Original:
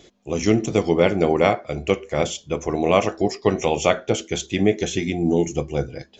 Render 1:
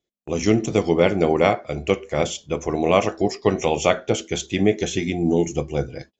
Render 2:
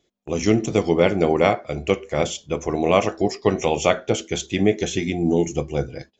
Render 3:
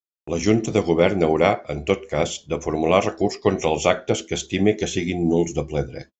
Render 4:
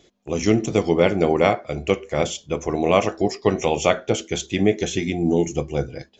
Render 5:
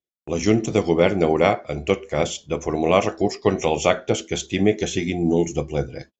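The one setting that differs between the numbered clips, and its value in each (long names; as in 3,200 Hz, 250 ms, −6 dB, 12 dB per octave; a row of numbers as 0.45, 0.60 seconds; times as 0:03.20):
noise gate, range: −33, −19, −60, −6, −46 decibels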